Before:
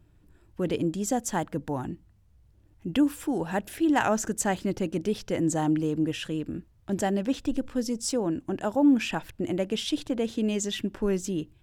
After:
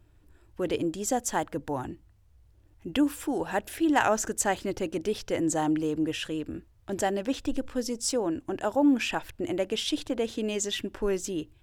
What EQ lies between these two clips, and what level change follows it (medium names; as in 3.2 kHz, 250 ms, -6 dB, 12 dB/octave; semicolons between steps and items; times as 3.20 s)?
peaking EQ 180 Hz -10 dB 0.95 oct; +1.5 dB